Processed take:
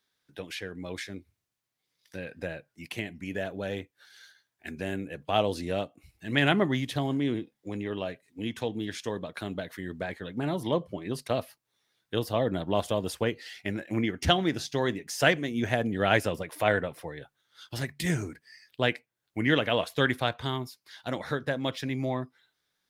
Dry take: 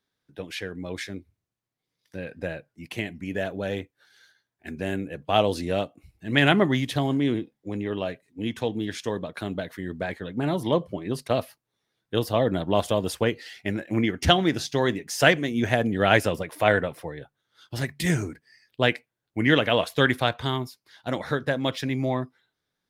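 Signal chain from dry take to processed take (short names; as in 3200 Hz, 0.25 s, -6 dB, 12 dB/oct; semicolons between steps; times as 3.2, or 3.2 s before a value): mismatched tape noise reduction encoder only; gain -4.5 dB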